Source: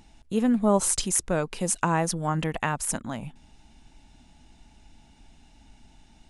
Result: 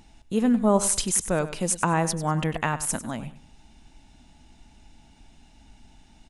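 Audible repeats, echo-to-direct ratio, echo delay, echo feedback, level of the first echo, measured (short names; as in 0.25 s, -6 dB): 2, -13.5 dB, 98 ms, 24%, -14.0 dB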